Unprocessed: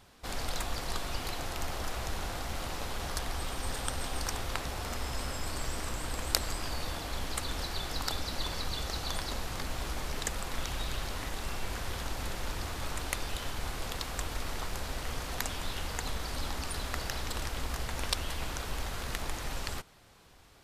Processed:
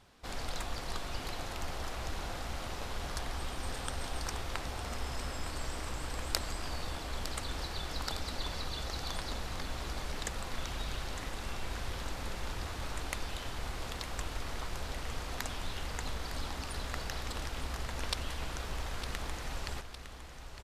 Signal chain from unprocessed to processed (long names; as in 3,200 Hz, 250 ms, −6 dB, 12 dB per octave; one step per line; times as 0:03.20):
high-shelf EQ 11,000 Hz −9.5 dB
repeating echo 908 ms, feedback 58%, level −11 dB
level −3 dB